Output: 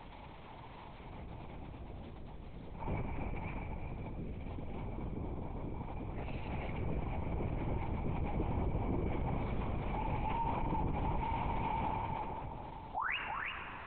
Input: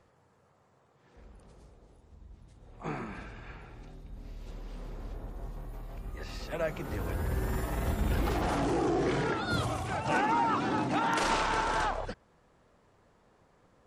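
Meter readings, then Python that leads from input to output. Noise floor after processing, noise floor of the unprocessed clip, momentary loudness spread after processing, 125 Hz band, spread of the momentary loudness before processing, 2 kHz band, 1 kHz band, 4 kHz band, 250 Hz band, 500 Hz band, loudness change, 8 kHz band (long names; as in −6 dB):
−50 dBFS, −66 dBFS, 14 LU, −1.5 dB, 19 LU, −8.0 dB, −7.0 dB, −12.0 dB, −6.0 dB, −9.0 dB, −8.5 dB, below −35 dB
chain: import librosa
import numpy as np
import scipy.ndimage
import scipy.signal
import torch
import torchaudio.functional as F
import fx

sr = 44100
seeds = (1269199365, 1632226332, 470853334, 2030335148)

y = scipy.signal.sosfilt(scipy.signal.butter(2, 99.0, 'highpass', fs=sr, output='sos'), x)
y = fx.dynamic_eq(y, sr, hz=1100.0, q=1.4, threshold_db=-39.0, ratio=4.0, max_db=3)
y = fx.rider(y, sr, range_db=10, speed_s=0.5)
y = 10.0 ** (-33.5 / 20.0) * np.tanh(y / 10.0 ** (-33.5 / 20.0))
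y = fx.vowel_filter(y, sr, vowel='u')
y = fx.dmg_crackle(y, sr, seeds[0], per_s=530.0, level_db=-65.0)
y = fx.spec_paint(y, sr, seeds[1], shape='rise', start_s=12.95, length_s=0.22, low_hz=680.0, high_hz=3000.0, level_db=-46.0)
y = y + 10.0 ** (-7.5 / 20.0) * np.pad(y, (int(339 * sr / 1000.0), 0))[:len(y)]
y = fx.rev_freeverb(y, sr, rt60_s=2.7, hf_ratio=0.4, predelay_ms=10, drr_db=8.0)
y = fx.lpc_vocoder(y, sr, seeds[2], excitation='whisper', order=8)
y = fx.env_flatten(y, sr, amount_pct=50)
y = F.gain(torch.from_numpy(y), 6.5).numpy()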